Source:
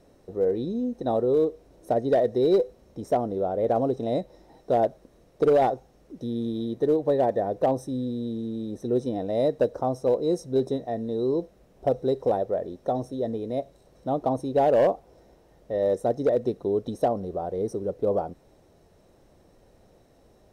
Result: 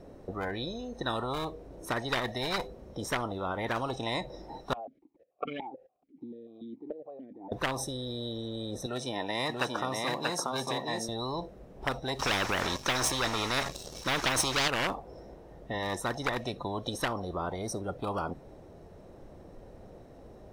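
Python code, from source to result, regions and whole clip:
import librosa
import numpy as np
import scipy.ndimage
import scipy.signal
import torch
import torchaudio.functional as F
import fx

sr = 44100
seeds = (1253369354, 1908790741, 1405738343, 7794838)

y = fx.chain(x, sr, fx.level_steps(step_db=19),
    fx.vowel_held(hz=6.9), at=(4.73, 7.52))
y = fx.chain(y, sr, fx.highpass(hz=260.0, slope=12),
    fx.echo_single(ms=635, db=-4.5), at=(8.86, 11.09))
y = fx.chain(y, sr, fx.peak_eq(hz=5900.0, db=12.0, octaves=1.2),
    fx.leveller(passes=2),
    fx.transient(attack_db=0, sustain_db=4), at=(12.19, 14.68))
y = fx.high_shelf(y, sr, hz=2400.0, db=-11.5)
y = fx.noise_reduce_blind(y, sr, reduce_db=13)
y = fx.spectral_comp(y, sr, ratio=10.0)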